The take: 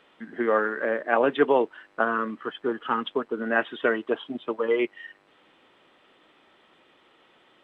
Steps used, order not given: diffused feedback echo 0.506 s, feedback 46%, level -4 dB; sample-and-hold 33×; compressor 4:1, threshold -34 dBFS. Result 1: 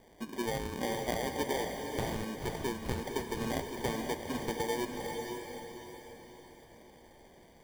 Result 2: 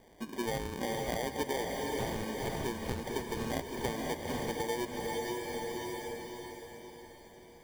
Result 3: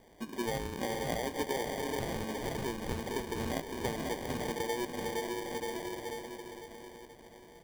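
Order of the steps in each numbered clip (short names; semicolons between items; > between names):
compressor > sample-and-hold > diffused feedback echo; sample-and-hold > diffused feedback echo > compressor; diffused feedback echo > compressor > sample-and-hold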